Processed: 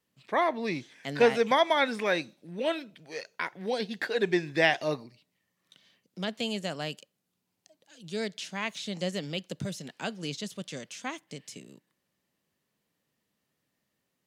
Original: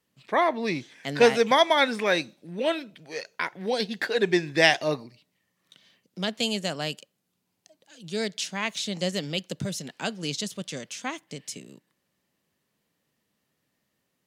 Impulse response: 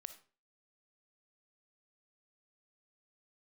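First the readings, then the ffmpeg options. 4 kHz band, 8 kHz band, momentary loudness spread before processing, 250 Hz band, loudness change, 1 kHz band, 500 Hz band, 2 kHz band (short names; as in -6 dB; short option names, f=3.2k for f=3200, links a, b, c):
-6.5 dB, -8.5 dB, 16 LU, -3.5 dB, -4.0 dB, -3.5 dB, -3.5 dB, -4.0 dB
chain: -filter_complex "[0:a]acrossover=split=3300[a][b];[b]acompressor=threshold=-36dB:ratio=4:attack=1:release=60[c];[a][c]amix=inputs=2:normalize=0,volume=-3.5dB"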